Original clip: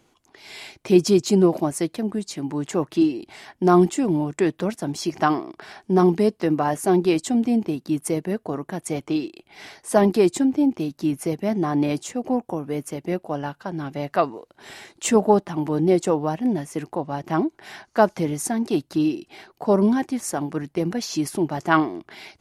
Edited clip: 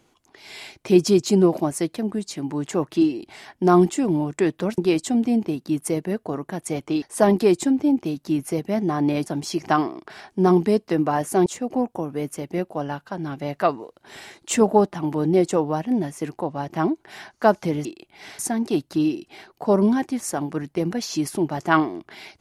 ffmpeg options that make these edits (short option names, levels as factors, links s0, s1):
-filter_complex "[0:a]asplit=7[s0][s1][s2][s3][s4][s5][s6];[s0]atrim=end=4.782[s7];[s1]atrim=start=6.978:end=9.222[s8];[s2]atrim=start=9.758:end=12.002[s9];[s3]atrim=start=4.778:end=6.982[s10];[s4]atrim=start=11.998:end=18.392[s11];[s5]atrim=start=9.218:end=9.762[s12];[s6]atrim=start=18.388[s13];[s7][s8]acrossfade=d=0.004:c1=hsin:c2=hsin[s14];[s14][s9]acrossfade=d=0.004:c1=hsin:c2=hsin[s15];[s15][s10]acrossfade=d=0.004:c1=hsin:c2=hsin[s16];[s16][s11]acrossfade=d=0.004:c1=hsin:c2=hsin[s17];[s17][s12]acrossfade=d=0.004:c1=hsin:c2=hsin[s18];[s18][s13]acrossfade=d=0.004:c1=hsin:c2=hsin"